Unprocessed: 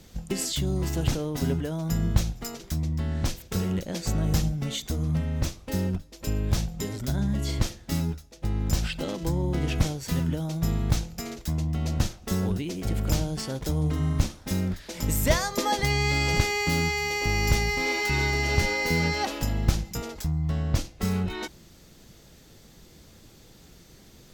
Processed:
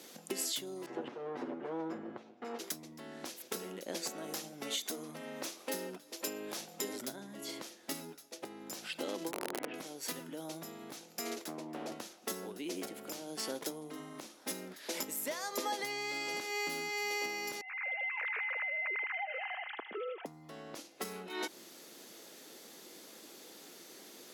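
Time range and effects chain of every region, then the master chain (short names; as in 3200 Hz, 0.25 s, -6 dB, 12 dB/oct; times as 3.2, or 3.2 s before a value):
0.86–2.59 minimum comb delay 8.3 ms + LPF 1800 Hz
4.09–6.84 low shelf 160 Hz -10 dB + upward compressor, threshold -44 dBFS
9.31–9.74 LPF 2500 Hz 24 dB/oct + wrapped overs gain 18.5 dB + core saturation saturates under 150 Hz
11.44–11.92 HPF 950 Hz 6 dB/oct + tilt shelf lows +9.5 dB, about 1200 Hz + Doppler distortion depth 0.23 ms
17.61–20.26 sine-wave speech + thin delay 77 ms, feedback 70%, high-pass 2700 Hz, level -5 dB + compressor, threshold -37 dBFS
whole clip: bell 11000 Hz +10 dB 0.21 oct; compressor 12:1, threshold -34 dBFS; HPF 280 Hz 24 dB/oct; gain +2 dB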